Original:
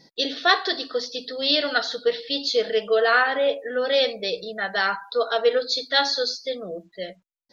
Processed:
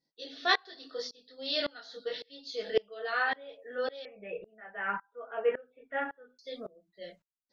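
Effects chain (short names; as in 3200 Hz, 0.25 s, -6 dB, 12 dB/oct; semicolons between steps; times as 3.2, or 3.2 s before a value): chorus voices 6, 0.37 Hz, delay 22 ms, depth 3.8 ms; 4.05–6.39 steep low-pass 2800 Hz 96 dB/oct; dB-ramp tremolo swelling 1.8 Hz, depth 26 dB; gain -2 dB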